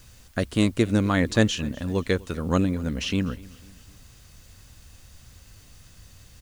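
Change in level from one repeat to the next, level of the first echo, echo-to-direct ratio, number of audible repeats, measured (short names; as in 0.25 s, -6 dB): -6.5 dB, -22.0 dB, -21.0 dB, 2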